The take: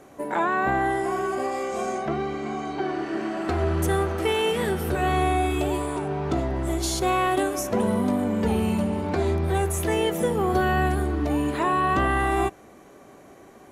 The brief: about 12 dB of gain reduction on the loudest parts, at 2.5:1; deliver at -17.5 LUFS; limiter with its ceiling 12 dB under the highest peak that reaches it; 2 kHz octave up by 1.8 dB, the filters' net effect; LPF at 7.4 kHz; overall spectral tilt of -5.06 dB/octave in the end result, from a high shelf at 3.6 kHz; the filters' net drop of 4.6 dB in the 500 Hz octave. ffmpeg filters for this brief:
-af "lowpass=7400,equalizer=f=500:t=o:g=-6.5,equalizer=f=2000:t=o:g=5,highshelf=f=3600:g=-8.5,acompressor=threshold=0.0112:ratio=2.5,volume=20,alimiter=limit=0.335:level=0:latency=1"

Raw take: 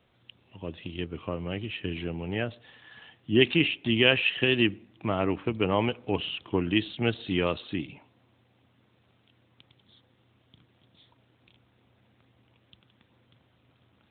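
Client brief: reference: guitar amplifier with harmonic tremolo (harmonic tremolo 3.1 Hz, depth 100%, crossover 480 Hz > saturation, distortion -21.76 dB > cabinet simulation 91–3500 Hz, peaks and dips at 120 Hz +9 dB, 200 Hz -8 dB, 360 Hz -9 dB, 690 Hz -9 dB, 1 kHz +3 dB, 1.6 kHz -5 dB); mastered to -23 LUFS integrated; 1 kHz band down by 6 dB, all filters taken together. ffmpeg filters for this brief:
-filter_complex "[0:a]equalizer=f=1000:t=o:g=-6,acrossover=split=480[s0][s1];[s0]aeval=exprs='val(0)*(1-1/2+1/2*cos(2*PI*3.1*n/s))':c=same[s2];[s1]aeval=exprs='val(0)*(1-1/2-1/2*cos(2*PI*3.1*n/s))':c=same[s3];[s2][s3]amix=inputs=2:normalize=0,asoftclip=threshold=0.224,highpass=91,equalizer=f=120:t=q:w=4:g=9,equalizer=f=200:t=q:w=4:g=-8,equalizer=f=360:t=q:w=4:g=-9,equalizer=f=690:t=q:w=4:g=-9,equalizer=f=1000:t=q:w=4:g=3,equalizer=f=1600:t=q:w=4:g=-5,lowpass=f=3500:w=0.5412,lowpass=f=3500:w=1.3066,volume=3.76"

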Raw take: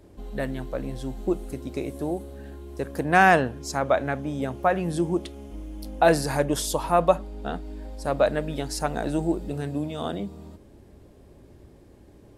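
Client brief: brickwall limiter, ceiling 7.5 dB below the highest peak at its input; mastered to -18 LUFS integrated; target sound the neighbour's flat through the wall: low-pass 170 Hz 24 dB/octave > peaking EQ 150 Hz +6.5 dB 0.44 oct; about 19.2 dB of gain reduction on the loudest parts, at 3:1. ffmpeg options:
-af "acompressor=threshold=0.00891:ratio=3,alimiter=level_in=1.78:limit=0.0631:level=0:latency=1,volume=0.562,lowpass=f=170:w=0.5412,lowpass=f=170:w=1.3066,equalizer=f=150:t=o:w=0.44:g=6.5,volume=28.2"

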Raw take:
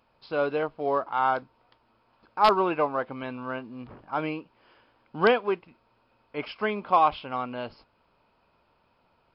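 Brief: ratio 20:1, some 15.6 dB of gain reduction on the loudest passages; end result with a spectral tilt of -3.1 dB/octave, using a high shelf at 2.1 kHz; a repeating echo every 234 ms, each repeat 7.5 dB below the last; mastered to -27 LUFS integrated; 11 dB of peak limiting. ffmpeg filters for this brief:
-af "highshelf=f=2100:g=8,acompressor=threshold=0.0355:ratio=20,alimiter=level_in=1.58:limit=0.0631:level=0:latency=1,volume=0.631,aecho=1:1:234|468|702|936|1170:0.422|0.177|0.0744|0.0312|0.0131,volume=3.98"

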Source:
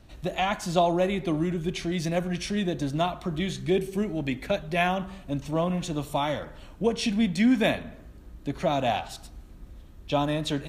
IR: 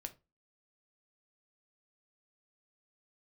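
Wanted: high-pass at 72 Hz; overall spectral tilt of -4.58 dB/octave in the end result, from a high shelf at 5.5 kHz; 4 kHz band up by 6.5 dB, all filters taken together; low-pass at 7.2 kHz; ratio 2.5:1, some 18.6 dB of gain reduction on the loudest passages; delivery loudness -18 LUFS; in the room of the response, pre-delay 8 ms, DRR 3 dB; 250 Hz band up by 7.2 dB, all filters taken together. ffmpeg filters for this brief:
-filter_complex "[0:a]highpass=72,lowpass=7200,equalizer=f=250:t=o:g=9,equalizer=f=4000:t=o:g=7,highshelf=f=5500:g=3.5,acompressor=threshold=0.0126:ratio=2.5,asplit=2[s0][s1];[1:a]atrim=start_sample=2205,adelay=8[s2];[s1][s2]afir=irnorm=-1:irlink=0,volume=1.06[s3];[s0][s3]amix=inputs=2:normalize=0,volume=6.68"

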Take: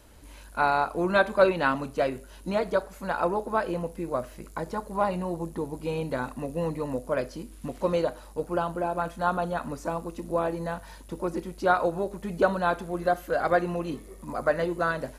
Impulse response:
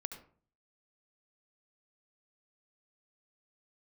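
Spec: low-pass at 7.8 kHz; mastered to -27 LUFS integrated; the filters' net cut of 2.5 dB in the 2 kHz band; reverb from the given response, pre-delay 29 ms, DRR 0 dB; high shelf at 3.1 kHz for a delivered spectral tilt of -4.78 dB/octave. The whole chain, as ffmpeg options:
-filter_complex "[0:a]lowpass=7800,equalizer=f=2000:t=o:g=-6.5,highshelf=f=3100:g=8,asplit=2[s0][s1];[1:a]atrim=start_sample=2205,adelay=29[s2];[s1][s2]afir=irnorm=-1:irlink=0,volume=1.26[s3];[s0][s3]amix=inputs=2:normalize=0,volume=0.841"

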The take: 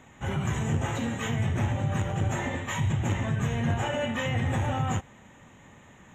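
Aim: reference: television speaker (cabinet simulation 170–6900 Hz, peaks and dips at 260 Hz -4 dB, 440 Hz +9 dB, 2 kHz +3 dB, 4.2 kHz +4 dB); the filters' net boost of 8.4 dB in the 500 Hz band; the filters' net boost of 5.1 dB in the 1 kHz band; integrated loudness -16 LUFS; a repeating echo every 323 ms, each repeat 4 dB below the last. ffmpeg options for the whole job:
-af "highpass=f=170:w=0.5412,highpass=f=170:w=1.3066,equalizer=f=260:t=q:w=4:g=-4,equalizer=f=440:t=q:w=4:g=9,equalizer=f=2000:t=q:w=4:g=3,equalizer=f=4200:t=q:w=4:g=4,lowpass=f=6900:w=0.5412,lowpass=f=6900:w=1.3066,equalizer=f=500:t=o:g=4.5,equalizer=f=1000:t=o:g=4.5,aecho=1:1:323|646|969|1292|1615|1938|2261|2584|2907:0.631|0.398|0.25|0.158|0.0994|0.0626|0.0394|0.0249|0.0157,volume=3.35"

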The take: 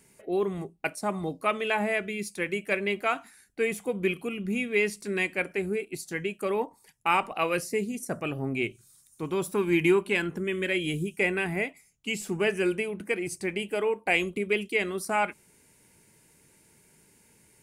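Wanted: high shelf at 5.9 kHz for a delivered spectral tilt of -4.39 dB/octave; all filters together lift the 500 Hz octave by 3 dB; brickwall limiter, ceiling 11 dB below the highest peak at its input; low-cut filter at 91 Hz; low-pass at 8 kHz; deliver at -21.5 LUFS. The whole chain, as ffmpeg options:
-af "highpass=91,lowpass=8000,equalizer=f=500:t=o:g=4,highshelf=f=5900:g=-3.5,volume=2.99,alimiter=limit=0.282:level=0:latency=1"

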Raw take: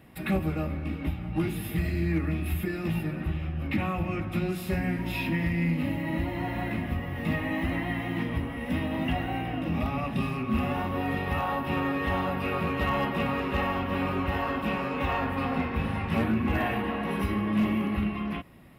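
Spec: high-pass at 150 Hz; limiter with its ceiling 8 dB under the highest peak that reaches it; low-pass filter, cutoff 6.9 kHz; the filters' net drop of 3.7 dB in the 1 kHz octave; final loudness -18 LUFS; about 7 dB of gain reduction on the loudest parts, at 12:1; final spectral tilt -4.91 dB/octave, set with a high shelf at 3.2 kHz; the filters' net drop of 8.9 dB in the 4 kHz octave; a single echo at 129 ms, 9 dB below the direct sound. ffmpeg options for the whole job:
-af "highpass=150,lowpass=6900,equalizer=f=1000:t=o:g=-3.5,highshelf=f=3200:g=-7.5,equalizer=f=4000:t=o:g=-8,acompressor=threshold=0.0316:ratio=12,alimiter=level_in=1.88:limit=0.0631:level=0:latency=1,volume=0.531,aecho=1:1:129:0.355,volume=9.44"

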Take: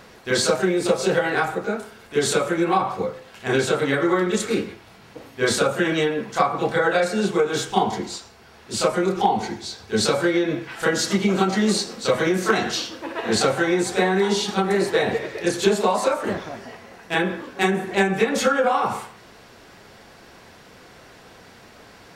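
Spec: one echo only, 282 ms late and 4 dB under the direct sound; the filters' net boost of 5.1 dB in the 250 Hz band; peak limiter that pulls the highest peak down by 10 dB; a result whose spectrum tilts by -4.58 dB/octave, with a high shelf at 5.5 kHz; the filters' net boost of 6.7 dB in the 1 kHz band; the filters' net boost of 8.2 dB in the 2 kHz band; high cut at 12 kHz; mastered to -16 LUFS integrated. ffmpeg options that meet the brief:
-af "lowpass=12000,equalizer=f=250:t=o:g=7,equalizer=f=1000:t=o:g=6.5,equalizer=f=2000:t=o:g=8.5,highshelf=f=5500:g=-3.5,alimiter=limit=0.422:level=0:latency=1,aecho=1:1:282:0.631,volume=1.19"

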